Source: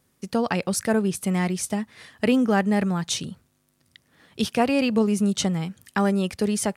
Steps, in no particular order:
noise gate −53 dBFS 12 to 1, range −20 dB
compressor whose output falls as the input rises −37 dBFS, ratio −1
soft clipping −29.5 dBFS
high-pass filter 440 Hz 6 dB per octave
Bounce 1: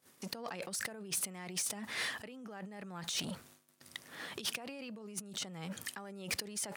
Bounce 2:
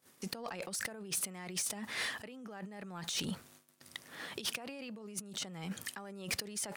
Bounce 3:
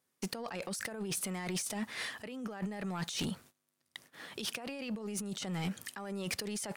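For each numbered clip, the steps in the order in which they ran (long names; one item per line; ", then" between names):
compressor whose output falls as the input rises, then soft clipping, then noise gate, then high-pass filter
compressor whose output falls as the input rises, then noise gate, then high-pass filter, then soft clipping
high-pass filter, then compressor whose output falls as the input rises, then noise gate, then soft clipping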